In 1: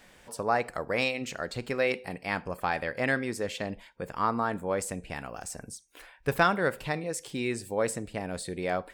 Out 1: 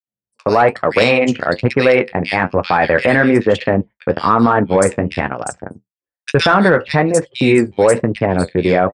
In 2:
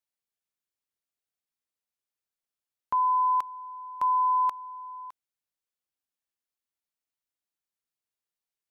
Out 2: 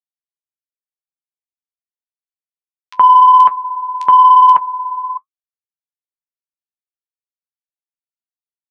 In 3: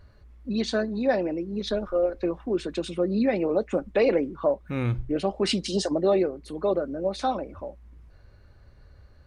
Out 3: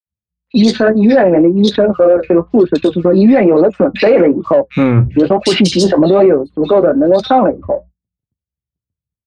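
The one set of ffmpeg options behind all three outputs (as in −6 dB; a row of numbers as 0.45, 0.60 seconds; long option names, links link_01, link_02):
-filter_complex "[0:a]anlmdn=6.31,agate=range=-35dB:threshold=-48dB:ratio=16:detection=peak,acrossover=split=2600[link_01][link_02];[link_01]adelay=70[link_03];[link_03][link_02]amix=inputs=2:normalize=0,flanger=delay=6.3:depth=7.6:regen=-47:speed=1.1:shape=triangular,highpass=frequency=85:width=0.5412,highpass=frequency=85:width=1.3066,aresample=22050,aresample=44100,bandreject=frequency=7900:width=24,asplit=2[link_04][link_05];[link_05]asoftclip=type=tanh:threshold=-25dB,volume=-6dB[link_06];[link_04][link_06]amix=inputs=2:normalize=0,alimiter=level_in=23dB:limit=-1dB:release=50:level=0:latency=1,adynamicequalizer=threshold=0.0355:dfrequency=3900:dqfactor=0.7:tfrequency=3900:tqfactor=0.7:attack=5:release=100:ratio=0.375:range=2.5:mode=cutabove:tftype=highshelf,volume=-1dB"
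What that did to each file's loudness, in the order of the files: +16.0, +17.0, +15.5 LU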